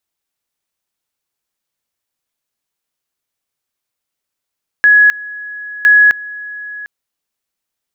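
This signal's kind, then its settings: two-level tone 1680 Hz -4 dBFS, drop 20 dB, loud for 0.26 s, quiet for 0.75 s, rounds 2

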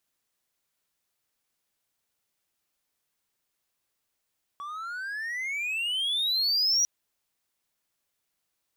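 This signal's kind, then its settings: gliding synth tone triangle, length 2.25 s, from 1130 Hz, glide +28.5 st, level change +15 dB, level -18 dB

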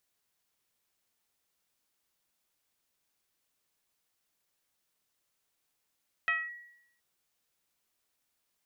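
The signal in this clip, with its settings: FM tone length 0.72 s, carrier 1920 Hz, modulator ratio 0.32, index 0.97, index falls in 0.22 s linear, decay 0.79 s, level -23.5 dB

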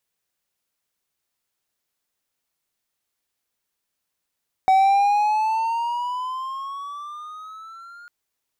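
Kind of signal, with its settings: gliding synth tone triangle, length 3.40 s, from 756 Hz, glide +11 st, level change -28.5 dB, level -10 dB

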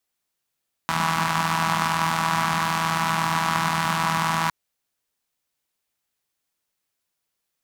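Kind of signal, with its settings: four-cylinder engine model, steady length 3.61 s, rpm 4900, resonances 190/1000 Hz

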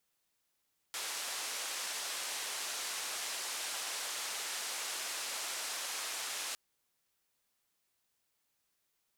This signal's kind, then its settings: noise band 550–8900 Hz, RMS -39.5 dBFS 5.61 s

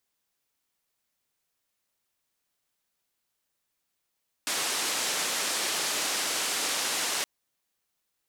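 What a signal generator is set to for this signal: noise band 280–8400 Hz, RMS -29.5 dBFS 2.77 s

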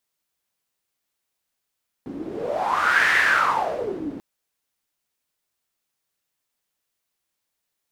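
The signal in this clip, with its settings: wind-like swept noise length 2.14 s, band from 280 Hz, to 1800 Hz, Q 7.1, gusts 1, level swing 15 dB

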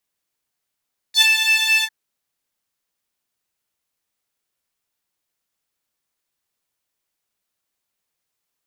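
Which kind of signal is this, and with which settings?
synth patch with pulse-width modulation A5, interval +12 st, detune 14 cents, sub -26.5 dB, filter highpass, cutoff 1900 Hz, Q 6.3, filter envelope 1.5 oct, filter decay 0.07 s, filter sustain 35%, attack 76 ms, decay 0.06 s, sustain -7.5 dB, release 0.06 s, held 0.69 s, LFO 4.6 Hz, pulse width 30%, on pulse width 7%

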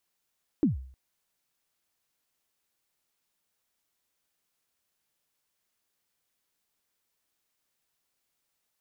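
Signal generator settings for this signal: kick drum length 0.31 s, from 340 Hz, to 65 Hz, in 0.136 s, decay 0.53 s, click off, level -17 dB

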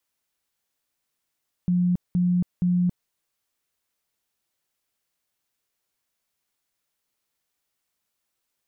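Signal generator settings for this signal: tone bursts 178 Hz, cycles 49, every 0.47 s, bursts 3, -18 dBFS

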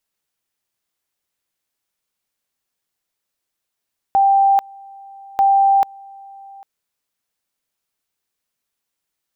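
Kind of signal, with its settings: two-level tone 787 Hz -10 dBFS, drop 26 dB, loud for 0.44 s, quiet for 0.80 s, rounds 2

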